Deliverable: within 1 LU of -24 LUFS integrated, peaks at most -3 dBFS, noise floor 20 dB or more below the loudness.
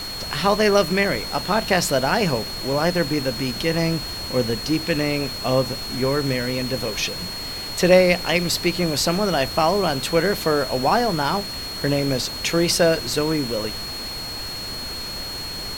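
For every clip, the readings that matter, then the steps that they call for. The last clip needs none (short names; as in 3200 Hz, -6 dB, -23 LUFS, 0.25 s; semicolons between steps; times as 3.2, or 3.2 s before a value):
steady tone 4300 Hz; tone level -30 dBFS; noise floor -31 dBFS; noise floor target -42 dBFS; loudness -21.5 LUFS; peak -3.0 dBFS; loudness target -24.0 LUFS
-> notch 4300 Hz, Q 30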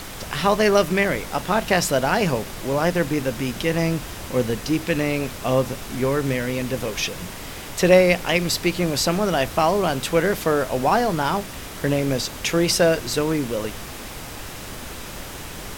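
steady tone none; noise floor -35 dBFS; noise floor target -42 dBFS
-> noise print and reduce 7 dB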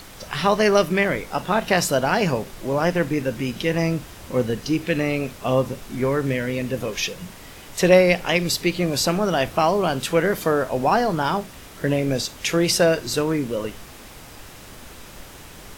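noise floor -42 dBFS; loudness -21.5 LUFS; peak -3.0 dBFS; loudness target -24.0 LUFS
-> gain -2.5 dB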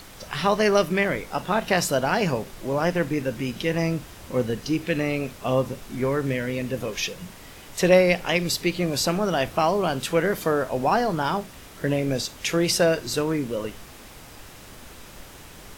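loudness -24.0 LUFS; peak -5.5 dBFS; noise floor -45 dBFS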